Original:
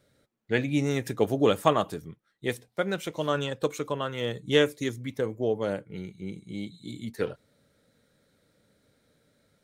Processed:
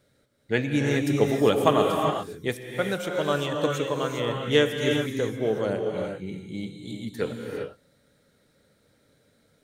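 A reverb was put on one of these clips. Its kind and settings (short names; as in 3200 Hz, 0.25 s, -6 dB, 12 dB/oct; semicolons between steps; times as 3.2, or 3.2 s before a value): non-linear reverb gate 0.43 s rising, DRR 1.5 dB; gain +1 dB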